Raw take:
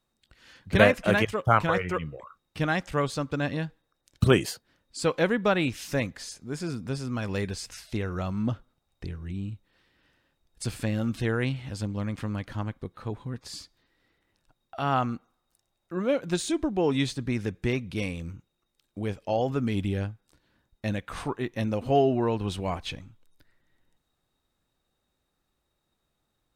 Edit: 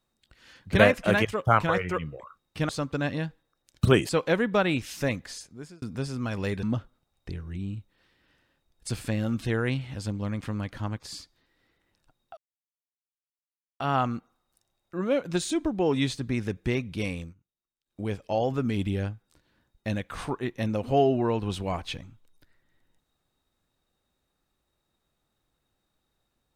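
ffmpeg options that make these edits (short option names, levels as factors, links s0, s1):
-filter_complex "[0:a]asplit=9[s0][s1][s2][s3][s4][s5][s6][s7][s8];[s0]atrim=end=2.692[s9];[s1]atrim=start=3.078:end=4.482[s10];[s2]atrim=start=4.998:end=6.73,asetpts=PTS-STARTPTS,afade=t=out:st=1.232:d=0.5[s11];[s3]atrim=start=6.73:end=7.542,asetpts=PTS-STARTPTS,afade=t=in:d=0.004:c=hsin[s12];[s4]atrim=start=8.378:end=12.732[s13];[s5]atrim=start=13.388:end=14.78,asetpts=PTS-STARTPTS,afade=t=out:st=1.388:d=0.004:c=hsin,apad=pad_dur=1.43[s14];[s6]atrim=start=14.78:end=18.32,asetpts=PTS-STARTPTS,afade=t=in:d=0.004:c=hsin,afade=t=out:st=3.4:d=0.14:silence=0.0944061[s15];[s7]atrim=start=18.32:end=18.84,asetpts=PTS-STARTPTS,volume=0.0944[s16];[s8]atrim=start=18.84,asetpts=PTS-STARTPTS,afade=t=in:d=0.14:silence=0.0944061[s17];[s9][s10]acrossfade=d=0.004:c1=hsin:c2=hsin[s18];[s11][s12]concat=n=2:v=0:a=1[s19];[s18][s19]acrossfade=d=0.004:c1=hsin:c2=hsin[s20];[s20][s13]acrossfade=d=0.004:c1=hsin:c2=hsin[s21];[s14][s15][s16][s17]concat=n=4:v=0:a=1[s22];[s21][s22]acrossfade=d=0.004:c1=hsin:c2=hsin"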